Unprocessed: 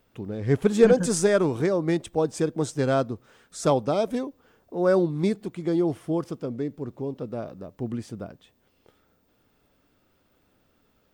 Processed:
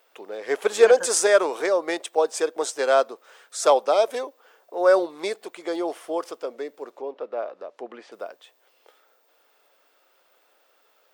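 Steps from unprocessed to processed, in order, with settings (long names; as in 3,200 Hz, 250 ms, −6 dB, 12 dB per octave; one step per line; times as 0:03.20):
0:06.91–0:08.12: treble cut that deepens with the level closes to 2,700 Hz, closed at −32 dBFS
high-pass filter 490 Hz 24 dB per octave
level +6.5 dB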